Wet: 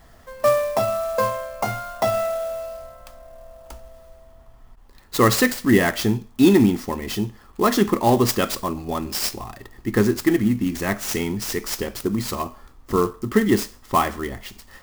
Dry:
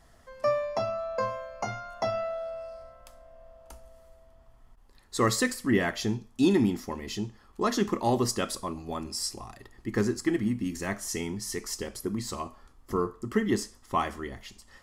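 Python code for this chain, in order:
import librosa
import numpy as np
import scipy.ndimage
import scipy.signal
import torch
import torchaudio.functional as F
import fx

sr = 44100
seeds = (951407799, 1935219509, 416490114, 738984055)

y = fx.clock_jitter(x, sr, seeds[0], jitter_ms=0.026)
y = F.gain(torch.from_numpy(y), 8.5).numpy()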